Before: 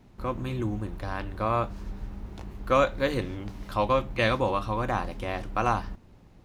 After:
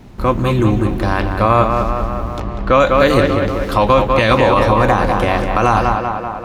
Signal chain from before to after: 2.4–2.8 LPF 4200 Hz 12 dB/oct; tape echo 0.194 s, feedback 70%, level -6 dB, low-pass 3100 Hz; maximiser +16.5 dB; gain -1 dB

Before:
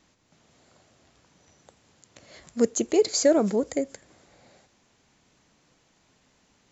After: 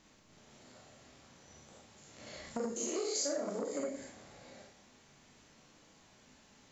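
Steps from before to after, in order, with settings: stepped spectrum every 0.1 s; 2.65–3.8 tone controls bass -12 dB, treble +3 dB; Schroeder reverb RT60 0.44 s, combs from 28 ms, DRR -1.5 dB; compressor 10:1, threshold -32 dBFS, peak gain reduction 17 dB; core saturation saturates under 690 Hz

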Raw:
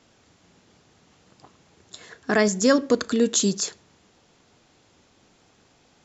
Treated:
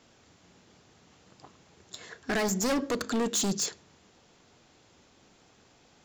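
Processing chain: overloaded stage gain 24 dB; de-hum 52.11 Hz, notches 6; gain -1 dB

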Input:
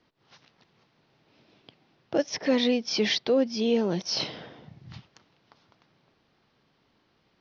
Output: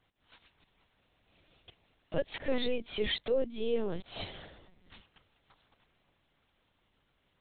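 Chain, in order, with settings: steep high-pass 170 Hz 48 dB/oct; high shelf 2500 Hz +10 dB, from 2.44 s +2 dB, from 4.34 s +8 dB; LPC vocoder at 8 kHz pitch kept; gain -6.5 dB

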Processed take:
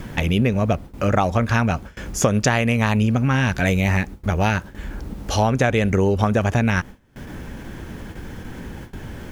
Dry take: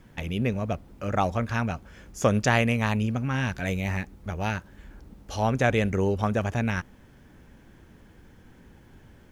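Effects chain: in parallel at 0 dB: upward compressor, threshold -31 dBFS; on the sum: gate with hold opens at -31 dBFS; compressor 10:1, threshold -20 dBFS, peak gain reduction 10.5 dB; gain +6 dB

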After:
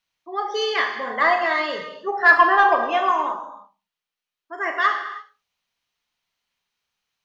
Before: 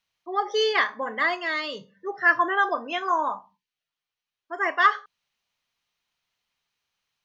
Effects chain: 1.1–3.11 bell 830 Hz +11.5 dB 1.6 oct; soft clip -5 dBFS, distortion -20 dB; non-linear reverb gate 0.37 s falling, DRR 3 dB; gain -1 dB

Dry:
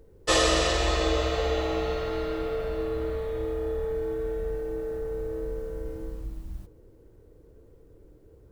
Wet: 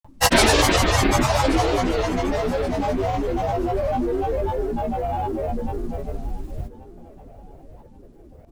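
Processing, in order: grains, pitch spread up and down by 12 st; feedback echo 1.128 s, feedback 34%, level -18 dB; gain +8 dB

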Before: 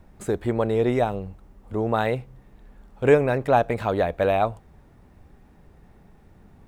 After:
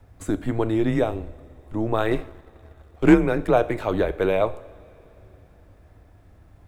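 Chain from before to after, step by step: two-slope reverb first 0.53 s, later 3.8 s, from -18 dB, DRR 12 dB; frequency shift -110 Hz; 2.11–3.14 sample leveller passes 1

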